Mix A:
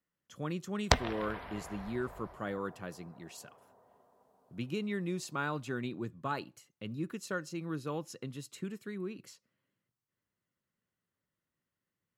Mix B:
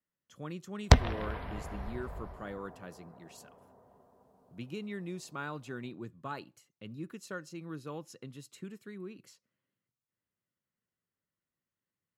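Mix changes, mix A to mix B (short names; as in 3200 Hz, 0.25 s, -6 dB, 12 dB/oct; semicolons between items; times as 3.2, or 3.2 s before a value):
speech -4.5 dB; background: add low shelf 320 Hz +12 dB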